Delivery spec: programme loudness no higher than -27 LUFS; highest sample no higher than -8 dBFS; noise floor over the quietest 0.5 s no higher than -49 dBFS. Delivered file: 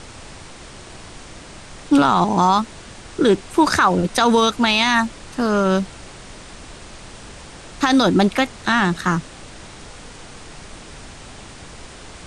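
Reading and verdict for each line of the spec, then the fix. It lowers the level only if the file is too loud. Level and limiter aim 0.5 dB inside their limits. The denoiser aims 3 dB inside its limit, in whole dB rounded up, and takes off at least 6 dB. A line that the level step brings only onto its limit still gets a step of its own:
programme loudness -17.5 LUFS: fail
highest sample -5.0 dBFS: fail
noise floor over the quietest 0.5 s -39 dBFS: fail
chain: denoiser 6 dB, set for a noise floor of -39 dBFS; gain -10 dB

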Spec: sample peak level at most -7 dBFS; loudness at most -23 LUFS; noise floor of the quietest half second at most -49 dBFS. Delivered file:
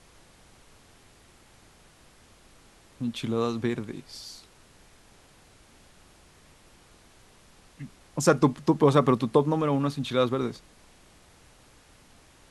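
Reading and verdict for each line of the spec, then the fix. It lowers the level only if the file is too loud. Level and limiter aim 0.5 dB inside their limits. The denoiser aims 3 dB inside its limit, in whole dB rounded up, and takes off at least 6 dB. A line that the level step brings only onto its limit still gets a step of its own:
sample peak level -5.5 dBFS: fail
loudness -25.5 LUFS: OK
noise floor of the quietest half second -56 dBFS: OK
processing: limiter -7.5 dBFS

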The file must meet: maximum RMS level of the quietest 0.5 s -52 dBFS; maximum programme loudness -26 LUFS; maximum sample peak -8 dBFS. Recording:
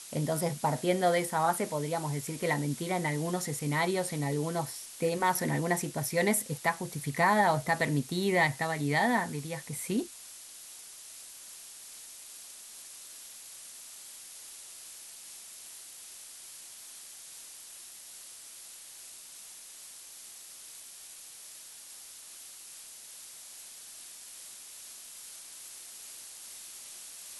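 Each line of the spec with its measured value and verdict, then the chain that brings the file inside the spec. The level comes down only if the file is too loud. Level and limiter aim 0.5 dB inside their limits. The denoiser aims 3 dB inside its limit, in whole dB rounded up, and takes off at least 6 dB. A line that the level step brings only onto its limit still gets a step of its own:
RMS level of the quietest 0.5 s -49 dBFS: fail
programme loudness -30.5 LUFS: OK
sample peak -12.5 dBFS: OK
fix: denoiser 6 dB, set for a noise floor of -49 dBFS

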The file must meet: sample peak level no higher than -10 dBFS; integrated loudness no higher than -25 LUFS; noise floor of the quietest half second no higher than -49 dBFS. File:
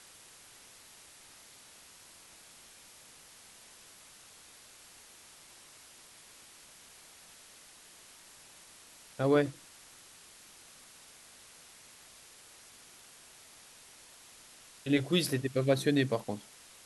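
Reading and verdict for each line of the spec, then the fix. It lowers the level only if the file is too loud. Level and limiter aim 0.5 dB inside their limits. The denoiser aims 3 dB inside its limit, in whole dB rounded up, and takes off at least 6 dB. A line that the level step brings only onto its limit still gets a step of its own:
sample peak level -14.5 dBFS: OK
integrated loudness -30.5 LUFS: OK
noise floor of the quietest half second -56 dBFS: OK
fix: none

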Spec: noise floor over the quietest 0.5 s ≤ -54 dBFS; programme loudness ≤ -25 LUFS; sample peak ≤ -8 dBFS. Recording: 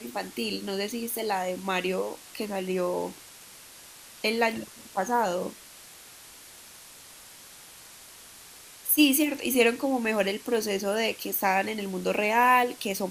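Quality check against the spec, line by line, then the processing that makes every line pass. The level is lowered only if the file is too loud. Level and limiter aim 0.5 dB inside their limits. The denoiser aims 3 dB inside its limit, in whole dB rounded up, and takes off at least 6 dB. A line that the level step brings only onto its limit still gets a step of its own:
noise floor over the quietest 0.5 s -49 dBFS: fail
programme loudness -26.5 LUFS: OK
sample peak -6.5 dBFS: fail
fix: denoiser 8 dB, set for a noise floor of -49 dBFS; limiter -8.5 dBFS

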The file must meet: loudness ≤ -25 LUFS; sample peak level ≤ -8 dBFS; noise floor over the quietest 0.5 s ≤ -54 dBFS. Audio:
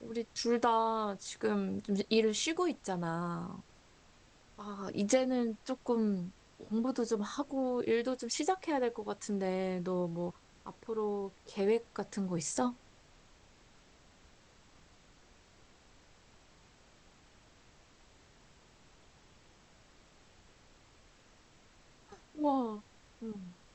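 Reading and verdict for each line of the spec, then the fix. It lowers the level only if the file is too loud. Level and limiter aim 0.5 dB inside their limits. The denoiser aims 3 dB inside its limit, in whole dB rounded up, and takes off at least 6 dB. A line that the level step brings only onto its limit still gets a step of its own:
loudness -34.5 LUFS: OK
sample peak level -15.5 dBFS: OK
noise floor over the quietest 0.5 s -62 dBFS: OK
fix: none

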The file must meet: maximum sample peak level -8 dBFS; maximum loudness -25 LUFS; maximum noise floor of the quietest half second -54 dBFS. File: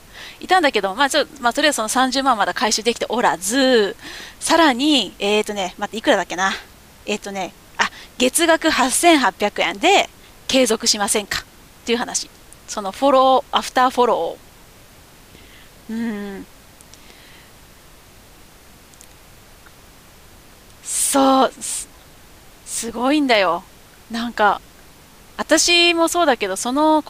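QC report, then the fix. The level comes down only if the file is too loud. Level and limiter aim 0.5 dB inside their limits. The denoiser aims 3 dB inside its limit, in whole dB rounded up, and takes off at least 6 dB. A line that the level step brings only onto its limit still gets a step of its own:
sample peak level -3.5 dBFS: fail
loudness -17.5 LUFS: fail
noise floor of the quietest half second -46 dBFS: fail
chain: denoiser 6 dB, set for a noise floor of -46 dBFS; gain -8 dB

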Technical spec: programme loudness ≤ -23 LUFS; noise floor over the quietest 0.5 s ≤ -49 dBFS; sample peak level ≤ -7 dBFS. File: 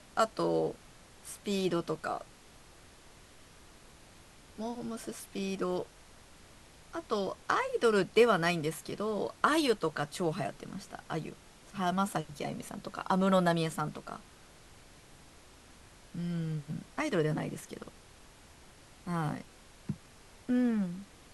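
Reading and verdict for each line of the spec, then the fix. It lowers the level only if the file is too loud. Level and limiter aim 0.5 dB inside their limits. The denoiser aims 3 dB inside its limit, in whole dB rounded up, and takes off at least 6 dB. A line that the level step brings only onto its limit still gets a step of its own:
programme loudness -33.0 LUFS: OK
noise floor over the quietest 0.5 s -56 dBFS: OK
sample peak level -10.5 dBFS: OK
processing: none

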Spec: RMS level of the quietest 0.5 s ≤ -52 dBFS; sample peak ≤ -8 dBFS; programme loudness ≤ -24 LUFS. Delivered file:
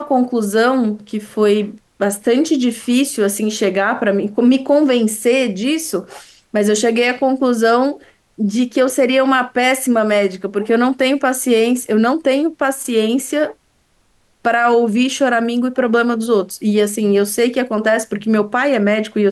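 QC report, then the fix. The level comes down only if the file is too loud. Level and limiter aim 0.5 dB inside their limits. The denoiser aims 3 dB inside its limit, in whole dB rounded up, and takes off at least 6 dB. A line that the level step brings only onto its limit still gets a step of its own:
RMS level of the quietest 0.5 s -59 dBFS: OK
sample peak -4.5 dBFS: fail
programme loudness -16.0 LUFS: fail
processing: gain -8.5 dB

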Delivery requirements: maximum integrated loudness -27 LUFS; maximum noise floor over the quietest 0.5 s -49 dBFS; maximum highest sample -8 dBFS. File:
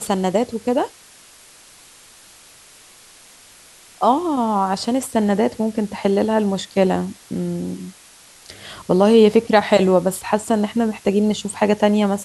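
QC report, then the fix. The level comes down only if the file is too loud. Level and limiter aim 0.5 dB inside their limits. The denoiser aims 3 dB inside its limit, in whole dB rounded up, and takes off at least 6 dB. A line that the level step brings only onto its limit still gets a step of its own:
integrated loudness -18.5 LUFS: fail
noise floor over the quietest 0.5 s -47 dBFS: fail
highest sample -2.0 dBFS: fail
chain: gain -9 dB

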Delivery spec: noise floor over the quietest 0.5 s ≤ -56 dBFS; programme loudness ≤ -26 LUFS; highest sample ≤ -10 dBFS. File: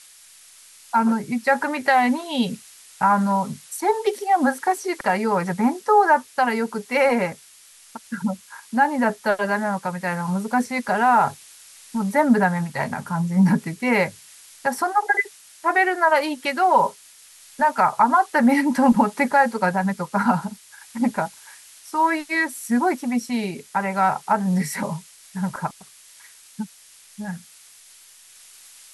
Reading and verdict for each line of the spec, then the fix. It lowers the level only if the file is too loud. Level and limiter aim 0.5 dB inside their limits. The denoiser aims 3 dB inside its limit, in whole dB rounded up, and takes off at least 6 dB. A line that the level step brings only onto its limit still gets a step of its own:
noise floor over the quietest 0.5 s -49 dBFS: fail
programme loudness -21.5 LUFS: fail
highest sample -5.5 dBFS: fail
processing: denoiser 6 dB, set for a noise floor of -49 dBFS; gain -5 dB

